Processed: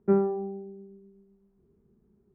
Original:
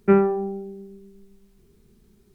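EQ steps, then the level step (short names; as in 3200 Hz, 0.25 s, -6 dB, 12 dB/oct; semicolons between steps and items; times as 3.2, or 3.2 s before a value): HPF 100 Hz 6 dB/oct; LPF 1000 Hz 12 dB/oct; air absorption 300 m; -5.0 dB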